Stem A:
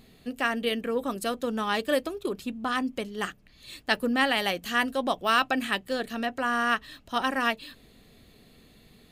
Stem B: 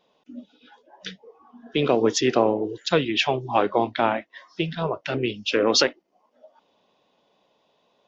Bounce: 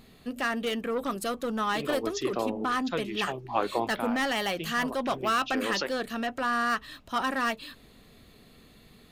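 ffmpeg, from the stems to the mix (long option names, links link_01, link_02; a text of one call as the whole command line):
ffmpeg -i stem1.wav -i stem2.wav -filter_complex "[0:a]asoftclip=type=tanh:threshold=-24.5dB,volume=0.5dB,asplit=2[link_01][link_02];[1:a]volume=-8dB[link_03];[link_02]apad=whole_len=355932[link_04];[link_03][link_04]sidechaincompress=threshold=-33dB:ratio=8:attack=16:release=554[link_05];[link_01][link_05]amix=inputs=2:normalize=0,equalizer=frequency=1200:width=2.1:gain=4.5" out.wav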